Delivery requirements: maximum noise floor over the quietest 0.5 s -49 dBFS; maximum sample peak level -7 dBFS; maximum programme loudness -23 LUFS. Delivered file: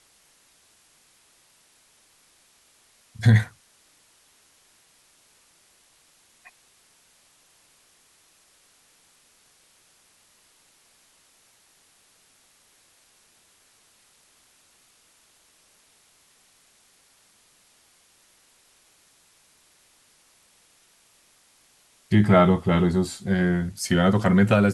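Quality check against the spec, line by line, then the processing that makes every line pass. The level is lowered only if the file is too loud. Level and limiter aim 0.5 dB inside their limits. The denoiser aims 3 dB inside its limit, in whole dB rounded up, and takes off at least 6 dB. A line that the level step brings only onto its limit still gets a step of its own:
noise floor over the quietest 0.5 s -60 dBFS: pass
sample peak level -6.0 dBFS: fail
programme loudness -21.0 LUFS: fail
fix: trim -2.5 dB

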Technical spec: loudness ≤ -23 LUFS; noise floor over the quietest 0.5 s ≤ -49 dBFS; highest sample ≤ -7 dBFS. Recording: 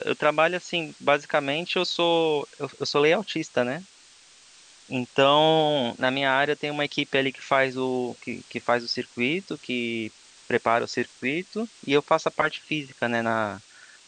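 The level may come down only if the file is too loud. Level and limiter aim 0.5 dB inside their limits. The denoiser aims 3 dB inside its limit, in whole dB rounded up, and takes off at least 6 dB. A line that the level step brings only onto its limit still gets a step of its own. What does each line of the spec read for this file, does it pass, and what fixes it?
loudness -25.0 LUFS: pass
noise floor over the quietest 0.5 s -53 dBFS: pass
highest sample -5.0 dBFS: fail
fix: peak limiter -7.5 dBFS

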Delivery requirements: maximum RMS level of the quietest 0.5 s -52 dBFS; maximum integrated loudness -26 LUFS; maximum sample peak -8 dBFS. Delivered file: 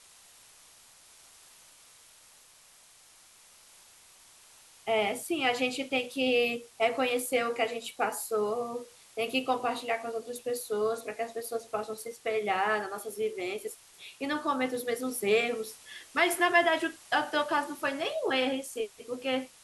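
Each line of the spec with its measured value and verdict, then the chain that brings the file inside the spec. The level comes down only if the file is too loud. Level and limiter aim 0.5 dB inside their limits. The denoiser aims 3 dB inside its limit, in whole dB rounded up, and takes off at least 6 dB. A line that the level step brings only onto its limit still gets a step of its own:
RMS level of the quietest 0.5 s -58 dBFS: pass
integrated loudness -30.5 LUFS: pass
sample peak -11.5 dBFS: pass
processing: none needed

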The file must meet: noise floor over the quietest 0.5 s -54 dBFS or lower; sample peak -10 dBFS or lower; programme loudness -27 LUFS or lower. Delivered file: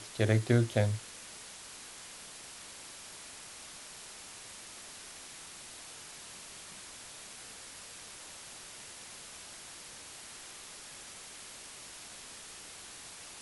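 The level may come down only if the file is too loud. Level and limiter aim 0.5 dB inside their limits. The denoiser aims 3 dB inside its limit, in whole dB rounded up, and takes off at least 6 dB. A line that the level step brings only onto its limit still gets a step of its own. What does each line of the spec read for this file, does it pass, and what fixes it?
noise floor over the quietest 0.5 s -49 dBFS: fail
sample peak -11.5 dBFS: pass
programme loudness -39.5 LUFS: pass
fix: noise reduction 8 dB, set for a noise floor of -49 dBFS

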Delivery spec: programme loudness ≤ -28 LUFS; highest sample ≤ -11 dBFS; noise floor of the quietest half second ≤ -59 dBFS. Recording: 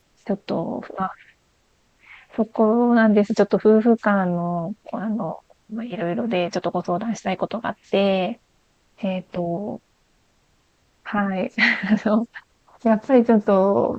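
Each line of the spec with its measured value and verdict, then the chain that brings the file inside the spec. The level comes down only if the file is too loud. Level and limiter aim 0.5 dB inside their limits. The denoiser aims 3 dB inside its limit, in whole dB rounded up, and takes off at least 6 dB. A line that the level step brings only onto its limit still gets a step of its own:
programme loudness -21.5 LUFS: fail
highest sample -5.5 dBFS: fail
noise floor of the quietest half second -63 dBFS: pass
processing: trim -7 dB

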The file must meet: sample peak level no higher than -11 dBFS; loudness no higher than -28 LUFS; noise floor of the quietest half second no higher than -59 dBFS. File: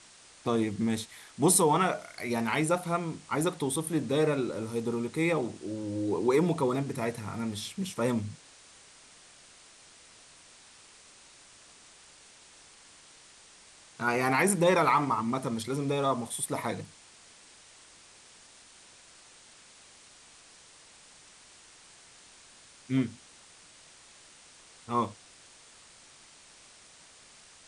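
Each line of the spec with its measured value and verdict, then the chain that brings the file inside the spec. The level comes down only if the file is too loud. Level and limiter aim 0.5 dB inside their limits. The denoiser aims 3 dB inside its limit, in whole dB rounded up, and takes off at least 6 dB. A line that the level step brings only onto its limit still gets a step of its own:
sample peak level -12.0 dBFS: pass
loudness -29.0 LUFS: pass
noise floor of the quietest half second -55 dBFS: fail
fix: noise reduction 7 dB, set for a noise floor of -55 dBFS

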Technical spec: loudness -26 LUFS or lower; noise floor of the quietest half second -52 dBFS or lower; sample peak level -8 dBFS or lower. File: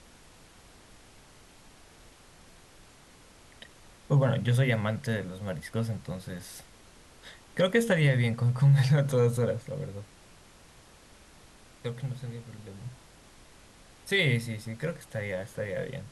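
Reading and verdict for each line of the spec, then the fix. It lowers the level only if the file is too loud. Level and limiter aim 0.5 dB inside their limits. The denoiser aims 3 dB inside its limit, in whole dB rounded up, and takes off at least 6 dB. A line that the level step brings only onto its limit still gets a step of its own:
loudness -28.5 LUFS: pass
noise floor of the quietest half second -55 dBFS: pass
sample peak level -13.0 dBFS: pass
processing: none needed

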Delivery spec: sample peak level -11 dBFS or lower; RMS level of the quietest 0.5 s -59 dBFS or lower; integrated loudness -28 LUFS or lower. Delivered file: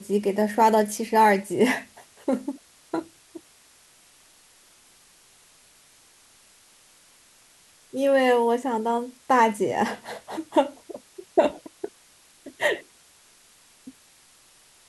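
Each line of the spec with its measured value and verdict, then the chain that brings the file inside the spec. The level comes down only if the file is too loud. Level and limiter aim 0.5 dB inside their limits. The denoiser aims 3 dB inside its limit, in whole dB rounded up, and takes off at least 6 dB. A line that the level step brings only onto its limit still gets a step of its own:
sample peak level -6.5 dBFS: fail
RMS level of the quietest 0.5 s -56 dBFS: fail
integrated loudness -23.5 LUFS: fail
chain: trim -5 dB

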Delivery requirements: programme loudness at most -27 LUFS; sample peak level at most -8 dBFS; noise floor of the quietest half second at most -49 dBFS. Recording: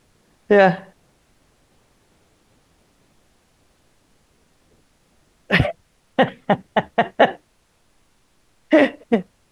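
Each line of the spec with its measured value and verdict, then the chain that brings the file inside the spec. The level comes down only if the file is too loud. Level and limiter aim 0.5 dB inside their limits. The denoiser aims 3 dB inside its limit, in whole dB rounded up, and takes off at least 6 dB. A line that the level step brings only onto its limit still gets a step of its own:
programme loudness -19.0 LUFS: fail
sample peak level -3.5 dBFS: fail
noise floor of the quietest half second -61 dBFS: pass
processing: trim -8.5 dB

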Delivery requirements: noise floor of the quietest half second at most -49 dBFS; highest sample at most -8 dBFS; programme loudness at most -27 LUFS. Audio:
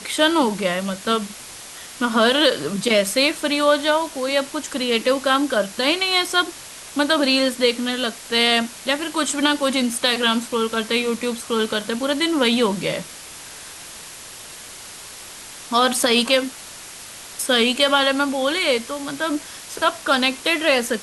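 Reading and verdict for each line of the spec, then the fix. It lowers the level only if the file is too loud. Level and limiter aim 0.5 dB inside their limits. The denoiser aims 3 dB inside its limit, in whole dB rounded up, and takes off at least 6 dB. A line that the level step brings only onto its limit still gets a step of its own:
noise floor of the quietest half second -38 dBFS: fail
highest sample -5.0 dBFS: fail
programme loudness -19.5 LUFS: fail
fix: noise reduction 6 dB, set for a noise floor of -38 dBFS; trim -8 dB

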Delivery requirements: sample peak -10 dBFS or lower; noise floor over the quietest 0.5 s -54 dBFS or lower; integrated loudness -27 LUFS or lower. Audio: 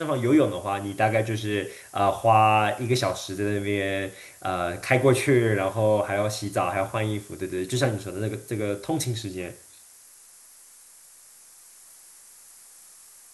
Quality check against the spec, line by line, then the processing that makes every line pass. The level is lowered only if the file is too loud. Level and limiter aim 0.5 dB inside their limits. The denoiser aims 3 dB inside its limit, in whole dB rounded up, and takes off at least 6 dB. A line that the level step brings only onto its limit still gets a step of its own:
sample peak -6.0 dBFS: fail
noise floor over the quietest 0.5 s -51 dBFS: fail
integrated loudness -25.0 LUFS: fail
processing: noise reduction 6 dB, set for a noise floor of -51 dBFS; trim -2.5 dB; peak limiter -10.5 dBFS

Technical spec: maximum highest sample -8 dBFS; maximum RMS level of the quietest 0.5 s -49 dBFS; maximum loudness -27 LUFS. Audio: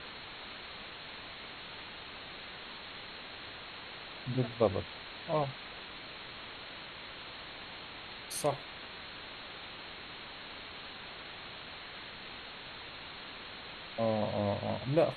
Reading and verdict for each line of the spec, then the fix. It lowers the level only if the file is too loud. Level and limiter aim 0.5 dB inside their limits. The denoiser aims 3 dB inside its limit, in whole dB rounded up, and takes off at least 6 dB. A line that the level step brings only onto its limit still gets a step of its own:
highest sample -13.5 dBFS: pass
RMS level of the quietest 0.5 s -47 dBFS: fail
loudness -39.5 LUFS: pass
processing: noise reduction 6 dB, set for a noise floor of -47 dBFS

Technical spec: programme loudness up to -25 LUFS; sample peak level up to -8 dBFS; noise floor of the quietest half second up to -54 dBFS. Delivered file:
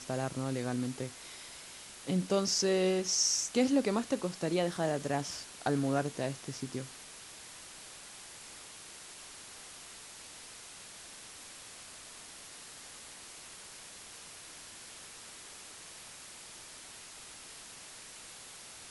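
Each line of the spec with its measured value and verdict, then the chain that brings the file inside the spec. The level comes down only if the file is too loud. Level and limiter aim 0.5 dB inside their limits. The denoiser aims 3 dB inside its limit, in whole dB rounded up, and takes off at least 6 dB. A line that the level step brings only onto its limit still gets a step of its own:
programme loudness -32.5 LUFS: pass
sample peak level -16.5 dBFS: pass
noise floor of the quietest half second -50 dBFS: fail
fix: noise reduction 7 dB, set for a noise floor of -50 dBFS

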